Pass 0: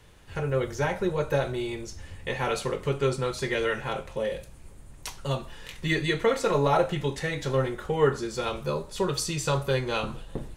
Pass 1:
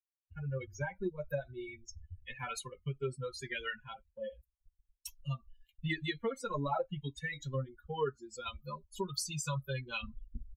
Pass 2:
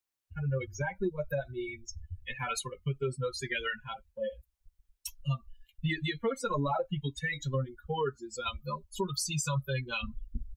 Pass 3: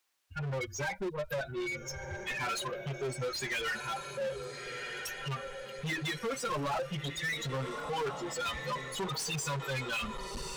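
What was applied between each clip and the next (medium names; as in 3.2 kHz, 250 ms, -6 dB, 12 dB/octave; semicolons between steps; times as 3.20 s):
expander on every frequency bin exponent 3; expander -54 dBFS; compression 2.5:1, threshold -38 dBFS, peak gain reduction 13 dB; trim +2.5 dB
peak limiter -29 dBFS, peak gain reduction 6.5 dB; trim +6.5 dB
echo that smears into a reverb 1375 ms, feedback 40%, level -15 dB; hard clipper -30 dBFS, distortion -11 dB; overdrive pedal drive 20 dB, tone 5.6 kHz, clips at -30 dBFS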